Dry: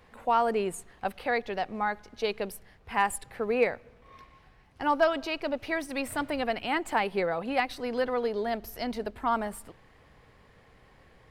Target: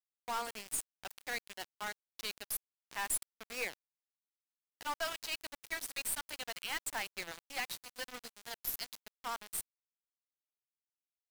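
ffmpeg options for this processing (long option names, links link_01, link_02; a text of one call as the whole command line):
ffmpeg -i in.wav -af "aderivative,aeval=exprs='val(0)*gte(abs(val(0)),0.00708)':channel_layout=same,aeval=exprs='(tanh(70.8*val(0)+0.3)-tanh(0.3))/70.8':channel_layout=same,volume=8dB" out.wav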